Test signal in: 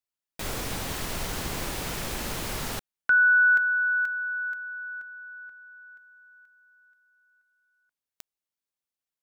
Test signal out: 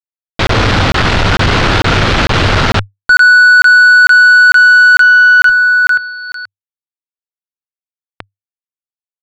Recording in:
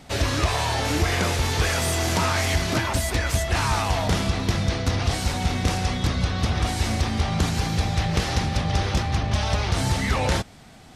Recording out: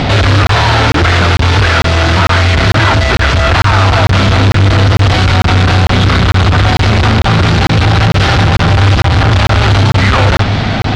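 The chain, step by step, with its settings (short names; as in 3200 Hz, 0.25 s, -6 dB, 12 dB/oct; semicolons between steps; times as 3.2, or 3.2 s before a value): fuzz box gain 46 dB, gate -55 dBFS; LPF 4300 Hz 24 dB/oct; bell 100 Hz +11 dB 0.36 oct; soft clip -10 dBFS; dynamic EQ 1400 Hz, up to +6 dB, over -32 dBFS, Q 3.9; upward compressor, threshold -24 dBFS; crackling interface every 0.45 s, samples 1024, zero, from 0.47; gain +6 dB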